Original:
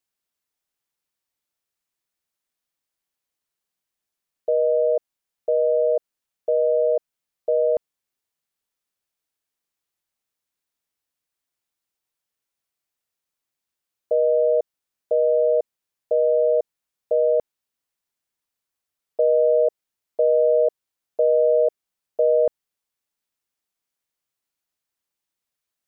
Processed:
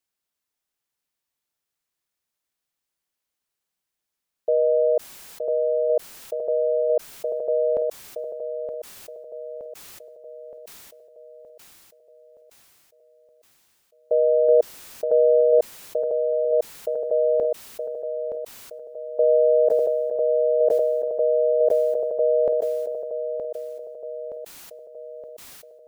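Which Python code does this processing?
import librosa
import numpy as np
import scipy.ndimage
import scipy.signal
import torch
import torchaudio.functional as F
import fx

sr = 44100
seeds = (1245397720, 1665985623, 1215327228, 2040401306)

y = fx.dynamic_eq(x, sr, hz=450.0, q=1.7, threshold_db=-31.0, ratio=4.0, max_db=5, at=(14.48, 15.59))
y = fx.echo_feedback(y, sr, ms=920, feedback_pct=55, wet_db=-8)
y = fx.sustainer(y, sr, db_per_s=20.0)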